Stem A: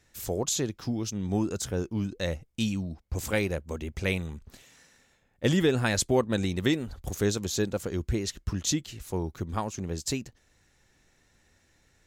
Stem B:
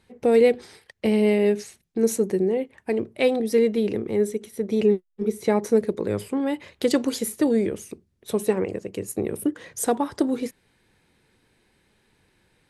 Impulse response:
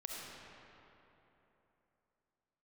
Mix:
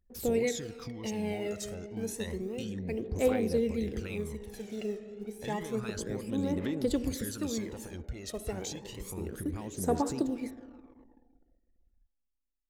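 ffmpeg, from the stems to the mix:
-filter_complex "[0:a]alimiter=limit=-22dB:level=0:latency=1:release=30,acompressor=threshold=-42dB:ratio=2,volume=-3dB,asplit=2[a][b];[b]volume=-17.5dB[c];[1:a]acrusher=bits=7:mix=0:aa=0.5,volume=-15.5dB,asplit=2[d][e];[e]volume=-5dB[f];[2:a]atrim=start_sample=2205[g];[c][f]amix=inputs=2:normalize=0[h];[h][g]afir=irnorm=-1:irlink=0[i];[a][d][i]amix=inputs=3:normalize=0,anlmdn=0.000398,equalizer=f=110:t=o:w=0.65:g=-4.5,aphaser=in_gain=1:out_gain=1:delay=1.6:decay=0.6:speed=0.3:type=triangular"

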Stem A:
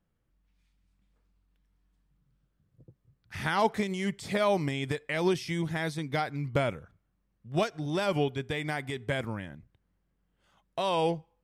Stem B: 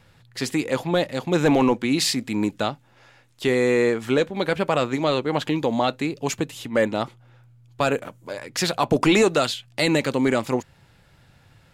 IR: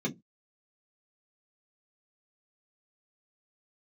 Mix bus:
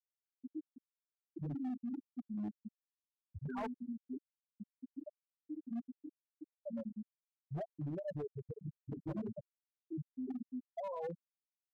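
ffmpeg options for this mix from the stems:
-filter_complex "[0:a]bandreject=f=360:w=12,acompressor=threshold=-38dB:ratio=2,volume=1.5dB,asplit=3[a][b][c];[a]atrim=end=3.76,asetpts=PTS-STARTPTS,afade=t=out:st=3.756:d=0.004:c=hsin[d];[b]atrim=start=3.76:end=6.66,asetpts=PTS-STARTPTS,volume=0[e];[c]atrim=start=6.66,asetpts=PTS-STARTPTS,afade=t=in:d=0.004:c=hsin[f];[d][e][f]concat=n=3:v=0:a=1[g];[1:a]bass=f=250:g=4,treble=f=4k:g=-15,volume=-19.5dB,asplit=2[h][i];[i]volume=-14.5dB[j];[2:a]atrim=start_sample=2205[k];[j][k]afir=irnorm=-1:irlink=0[l];[g][h][l]amix=inputs=3:normalize=0,afftfilt=real='re*gte(hypot(re,im),0.126)':imag='im*gte(hypot(re,im),0.126)':win_size=1024:overlap=0.75,asoftclip=type=hard:threshold=-32dB,alimiter=level_in=12dB:limit=-24dB:level=0:latency=1:release=36,volume=-12dB"

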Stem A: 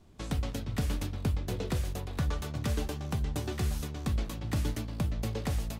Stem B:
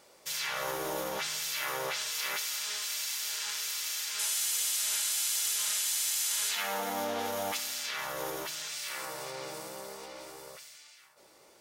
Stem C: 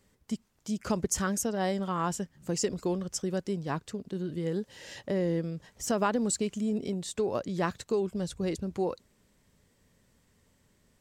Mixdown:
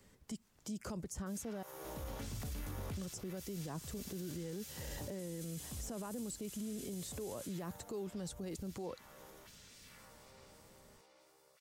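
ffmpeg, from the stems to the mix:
-filter_complex "[0:a]adelay=1650,volume=-4dB[a];[1:a]adelay=1000,volume=-12dB,afade=t=out:st=7.42:d=0.49:silence=0.354813[b];[2:a]acrossover=split=200[c][d];[d]acompressor=threshold=-31dB:ratio=2.5[e];[c][e]amix=inputs=2:normalize=0,volume=2.5dB,asplit=3[f][g][h];[f]atrim=end=1.63,asetpts=PTS-STARTPTS,afade=t=out:st=1.626:d=0.004:c=hsin[i];[g]atrim=start=1.63:end=2.97,asetpts=PTS-STARTPTS,volume=0[j];[h]atrim=start=2.97,asetpts=PTS-STARTPTS,afade=t=in:d=0.004:c=hsin[k];[i][j][k]concat=n=3:v=0:a=1,asplit=2[l][m];[m]apad=whole_len=328361[n];[a][n]sidechaincompress=threshold=-43dB:ratio=8:attack=16:release=640[o];[o][b][l]amix=inputs=3:normalize=0,acrossover=split=1100|7100[p][q][r];[p]acompressor=threshold=-37dB:ratio=4[s];[q]acompressor=threshold=-55dB:ratio=4[t];[r]acompressor=threshold=-49dB:ratio=4[u];[s][t][u]amix=inputs=3:normalize=0,alimiter=level_in=11dB:limit=-24dB:level=0:latency=1:release=10,volume=-11dB"

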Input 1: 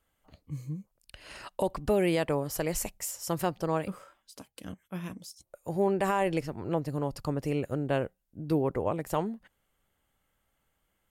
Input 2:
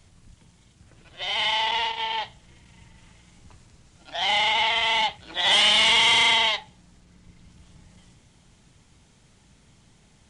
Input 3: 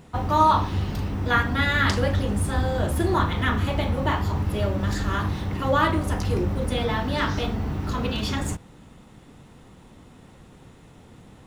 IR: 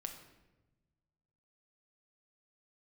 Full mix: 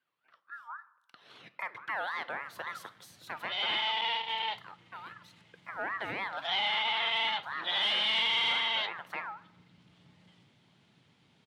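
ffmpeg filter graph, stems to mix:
-filter_complex "[0:a]flanger=delay=3.8:depth=7.7:regen=88:speed=0.21:shape=triangular,asoftclip=type=tanh:threshold=-23.5dB,aeval=exprs='val(0)*sin(2*PI*1300*n/s+1300*0.2/3.7*sin(2*PI*3.7*n/s))':c=same,volume=-4dB,asplit=2[a][b];[b]volume=-6dB[c];[1:a]asoftclip=type=tanh:threshold=-11dB,adelay=2300,volume=-6.5dB[d];[3:a]atrim=start_sample=2205[e];[c][e]afir=irnorm=-1:irlink=0[f];[a][d][f]amix=inputs=3:normalize=0,highpass=f=120:w=0.5412,highpass=f=120:w=1.3066,highshelf=f=5.1k:t=q:w=1.5:g=-11,alimiter=limit=-22dB:level=0:latency=1:release=259"

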